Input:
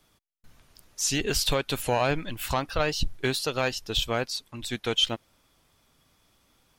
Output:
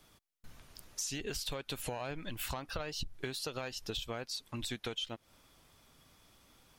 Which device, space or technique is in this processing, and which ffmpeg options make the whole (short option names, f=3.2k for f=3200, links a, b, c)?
serial compression, leveller first: -af "acompressor=threshold=-31dB:ratio=2,acompressor=threshold=-38dB:ratio=5,volume=1.5dB"